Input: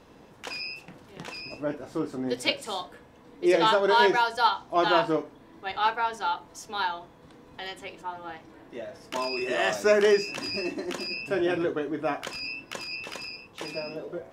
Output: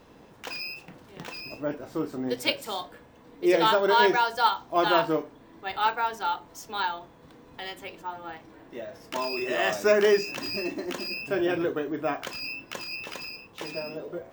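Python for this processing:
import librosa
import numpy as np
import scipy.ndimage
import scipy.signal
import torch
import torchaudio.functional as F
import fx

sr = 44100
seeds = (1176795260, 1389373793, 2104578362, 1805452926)

y = np.repeat(x[::2], 2)[:len(x)]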